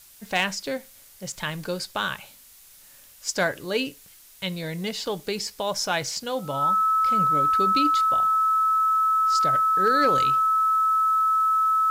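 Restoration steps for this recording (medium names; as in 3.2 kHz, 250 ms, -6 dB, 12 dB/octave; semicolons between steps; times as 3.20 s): clip repair -12.5 dBFS; band-stop 1.3 kHz, Q 30; noise print and reduce 20 dB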